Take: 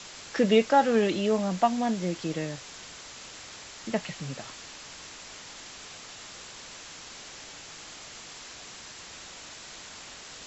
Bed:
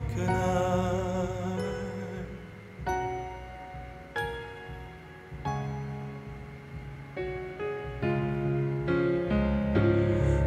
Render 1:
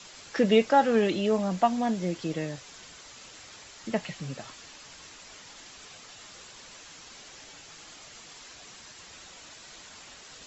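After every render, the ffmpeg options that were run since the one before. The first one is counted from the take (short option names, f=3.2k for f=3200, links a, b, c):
-af "afftdn=nr=6:nf=-45"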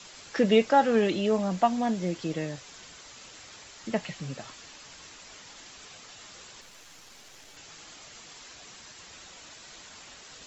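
-filter_complex "[0:a]asettb=1/sr,asplit=3[a][b][c];[a]atrim=end=6.614[d];[b]atrim=start=6.61:end=7.57,asetpts=PTS-STARTPTS,afade=t=in:d=0.004:c=qsin,afade=t=out:st=0.956:d=0.004:c=qsin,aeval=exprs='if(lt(val(0),0),0.251*val(0),val(0))':c=same[e];[c]atrim=start=7.566[f];[d][e]acrossfade=d=0.004:c1=hsin:c2=qsin[g];[g][f]acrossfade=d=0.004:c1=qsin:c2=hsin"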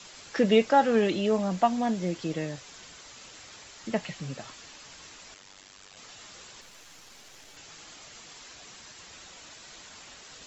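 -filter_complex "[0:a]asettb=1/sr,asplit=3[a][b][c];[a]atrim=end=5.344[d];[b]atrim=start=5.34:end=5.97,asetpts=PTS-STARTPTS,afade=t=in:d=0.004:c=qsin,afade=t=out:st=0.626:d=0.004:c=qsin,tremolo=f=97:d=0.947[e];[c]atrim=start=5.966[f];[d][e]acrossfade=d=0.004:c1=hsin:c2=qsin[g];[g][f]acrossfade=d=0.004:c1=qsin:c2=hsin"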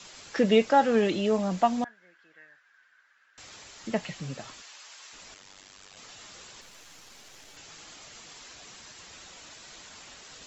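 -filter_complex "[0:a]asettb=1/sr,asplit=3[a][b][c];[a]atrim=end=1.844[d];[b]atrim=start=1.84:end=3.38,asetpts=PTS-STARTPTS,afade=t=in:d=0.004:c=qsin,afade=t=out:st=1.536:d=0.004:c=qsin,bandpass=f=1.6k:t=q:w=10[e];[c]atrim=start=3.376[f];[d][e]acrossfade=d=0.004:c1=hsin:c2=qsin[g];[g][f]acrossfade=d=0.004:c1=qsin:c2=hsin,asplit=3[h][i][j];[h]afade=t=out:st=4.61:d=0.02[k];[i]highpass=780,afade=t=in:st=4.61:d=0.02,afade=t=out:st=5.12:d=0.02[l];[j]afade=t=in:st=5.12:d=0.02[m];[k][l][m]amix=inputs=3:normalize=0"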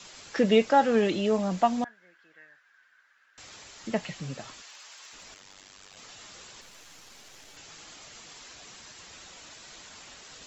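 -filter_complex "[0:a]asettb=1/sr,asplit=3[a][b][c];[a]atrim=end=4.684[d];[b]atrim=start=4.68:end=6.02,asetpts=PTS-STARTPTS,afade=t=in:d=0.004:c=qsin,afade=t=out:st=1.336:d=0.004:c=qsin,asoftclip=type=hard:threshold=-40dB[e];[c]atrim=start=6.016[f];[d][e]acrossfade=d=0.004:c1=hsin:c2=qsin[g];[g][f]acrossfade=d=0.004:c1=qsin:c2=hsin"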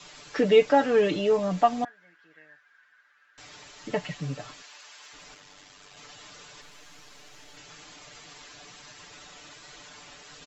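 -af "highshelf=f=6.5k:g=-8.5,aecho=1:1:6.8:0.74"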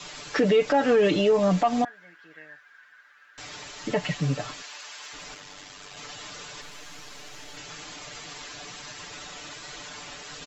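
-af "acontrast=83,alimiter=limit=-13.5dB:level=0:latency=1:release=109"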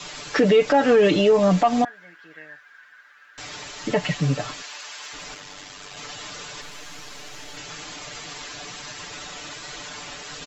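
-af "volume=4dB"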